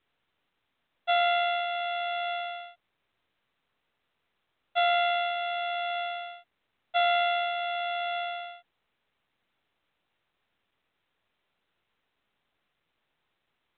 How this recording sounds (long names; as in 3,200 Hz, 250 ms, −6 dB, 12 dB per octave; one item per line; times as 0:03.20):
a buzz of ramps at a fixed pitch in blocks of 8 samples
mu-law